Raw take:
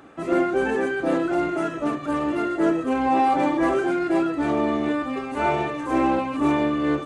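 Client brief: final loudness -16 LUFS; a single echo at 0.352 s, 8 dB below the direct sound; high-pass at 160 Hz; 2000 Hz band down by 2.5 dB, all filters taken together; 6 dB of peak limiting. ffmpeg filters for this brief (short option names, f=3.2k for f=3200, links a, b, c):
-af "highpass=160,equalizer=f=2k:t=o:g=-3.5,alimiter=limit=-17dB:level=0:latency=1,aecho=1:1:352:0.398,volume=9dB"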